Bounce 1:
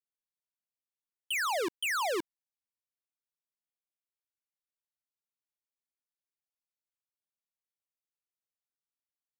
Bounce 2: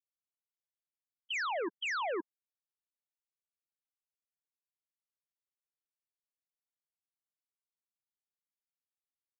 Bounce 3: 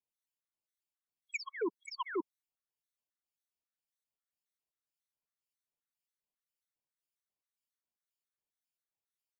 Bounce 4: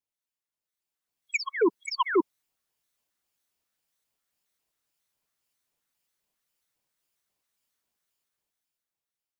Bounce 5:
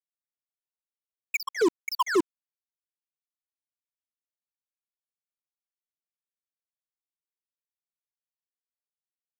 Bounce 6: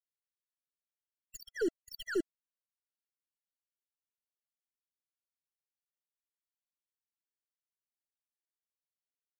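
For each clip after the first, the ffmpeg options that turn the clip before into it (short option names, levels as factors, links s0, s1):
-af "afftfilt=real='re*gte(hypot(re,im),0.0355)':imag='im*gte(hypot(re,im),0.0355)':win_size=1024:overlap=0.75,alimiter=level_in=3.55:limit=0.0631:level=0:latency=1:release=12,volume=0.282,volume=1.41"
-filter_complex "[0:a]acrossover=split=1900[s0][s1];[s0]aeval=exprs='val(0)*(1-0.7/2+0.7/2*cos(2*PI*1.9*n/s))':c=same[s2];[s1]aeval=exprs='val(0)*(1-0.7/2-0.7/2*cos(2*PI*1.9*n/s))':c=same[s3];[s2][s3]amix=inputs=2:normalize=0,afftfilt=real='re*gt(sin(2*PI*3.7*pts/sr)*(1-2*mod(floor(b*sr/1024/1100),2)),0)':imag='im*gt(sin(2*PI*3.7*pts/sr)*(1-2*mod(floor(b*sr/1024/1100),2)),0)':win_size=1024:overlap=0.75,volume=1.68"
-af "dynaudnorm=f=210:g=11:m=4.22"
-af "acrusher=bits=4:mix=0:aa=0.5"
-af "aeval=exprs='0.2*(cos(1*acos(clip(val(0)/0.2,-1,1)))-cos(1*PI/2))+0.0251*(cos(2*acos(clip(val(0)/0.2,-1,1)))-cos(2*PI/2))':c=same,acrusher=bits=8:mode=log:mix=0:aa=0.000001,afftfilt=real='re*eq(mod(floor(b*sr/1024/670),2),0)':imag='im*eq(mod(floor(b*sr/1024/670),2),0)':win_size=1024:overlap=0.75,volume=0.355"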